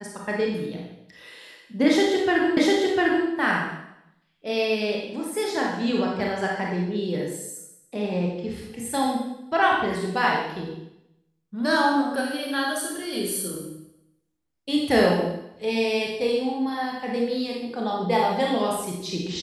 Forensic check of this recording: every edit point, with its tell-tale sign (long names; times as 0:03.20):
0:02.57: the same again, the last 0.7 s